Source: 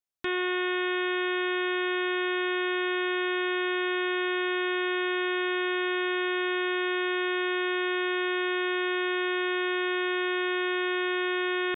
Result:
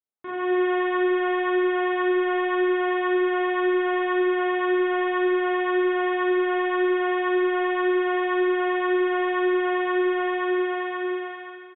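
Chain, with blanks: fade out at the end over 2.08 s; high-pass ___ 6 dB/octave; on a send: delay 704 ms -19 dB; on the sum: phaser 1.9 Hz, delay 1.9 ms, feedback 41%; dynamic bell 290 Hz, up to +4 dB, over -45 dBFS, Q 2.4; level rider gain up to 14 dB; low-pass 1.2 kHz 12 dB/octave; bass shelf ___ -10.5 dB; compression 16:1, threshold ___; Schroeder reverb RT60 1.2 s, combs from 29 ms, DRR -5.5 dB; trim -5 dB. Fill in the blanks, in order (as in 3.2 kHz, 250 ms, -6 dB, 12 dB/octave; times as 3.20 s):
110 Hz, 140 Hz, -18 dBFS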